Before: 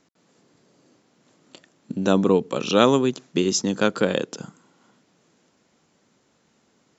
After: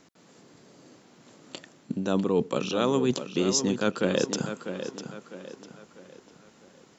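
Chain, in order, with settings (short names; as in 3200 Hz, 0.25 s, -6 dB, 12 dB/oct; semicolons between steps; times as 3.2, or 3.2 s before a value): reverse; compressor 6:1, threshold -28 dBFS, peak gain reduction 17 dB; reverse; tape echo 0.65 s, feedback 44%, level -8 dB, low-pass 4900 Hz; gain +6 dB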